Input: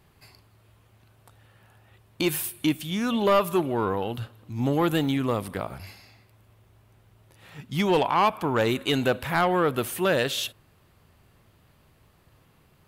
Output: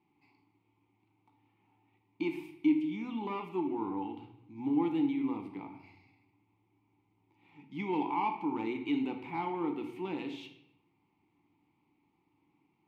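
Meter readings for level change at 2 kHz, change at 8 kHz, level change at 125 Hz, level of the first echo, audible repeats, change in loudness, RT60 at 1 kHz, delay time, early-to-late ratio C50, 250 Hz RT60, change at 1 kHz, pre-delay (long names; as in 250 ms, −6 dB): −15.0 dB, below −30 dB, −17.5 dB, no echo audible, no echo audible, −9.0 dB, 0.70 s, no echo audible, 8.0 dB, 1.0 s, −10.5 dB, 4 ms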